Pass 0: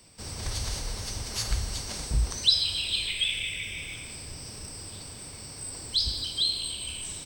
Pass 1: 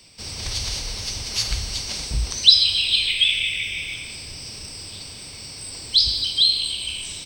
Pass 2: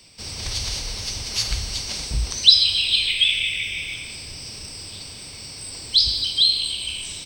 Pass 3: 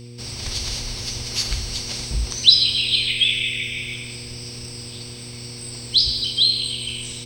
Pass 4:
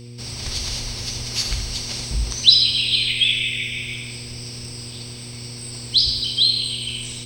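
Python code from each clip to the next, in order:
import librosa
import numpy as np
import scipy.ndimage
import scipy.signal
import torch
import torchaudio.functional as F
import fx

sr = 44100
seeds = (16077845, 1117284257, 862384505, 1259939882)

y1 = fx.band_shelf(x, sr, hz=3600.0, db=8.0, octaves=1.7)
y1 = F.gain(torch.from_numpy(y1), 1.5).numpy()
y2 = y1
y3 = fx.dmg_buzz(y2, sr, base_hz=120.0, harmonics=4, level_db=-39.0, tilt_db=-6, odd_only=False)
y4 = y3 + 10.0 ** (-10.0 / 20.0) * np.pad(y3, (int(76 * sr / 1000.0), 0))[:len(y3)]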